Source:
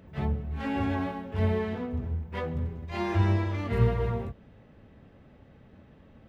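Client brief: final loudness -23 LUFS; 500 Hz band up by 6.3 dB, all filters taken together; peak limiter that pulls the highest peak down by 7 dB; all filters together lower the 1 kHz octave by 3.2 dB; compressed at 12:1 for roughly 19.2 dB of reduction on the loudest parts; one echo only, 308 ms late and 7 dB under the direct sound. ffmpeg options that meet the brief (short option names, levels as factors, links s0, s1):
-af "equalizer=f=500:t=o:g=9,equalizer=f=1000:t=o:g=-8,acompressor=threshold=0.0178:ratio=12,alimiter=level_in=2.82:limit=0.0631:level=0:latency=1,volume=0.355,aecho=1:1:308:0.447,volume=7.94"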